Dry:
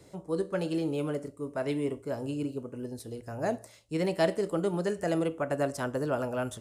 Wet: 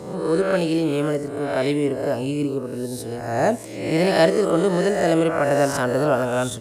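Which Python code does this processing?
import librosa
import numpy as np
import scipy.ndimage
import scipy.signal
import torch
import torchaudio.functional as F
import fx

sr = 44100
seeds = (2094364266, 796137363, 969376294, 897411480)

y = fx.spec_swells(x, sr, rise_s=0.87)
y = y * librosa.db_to_amplitude(8.5)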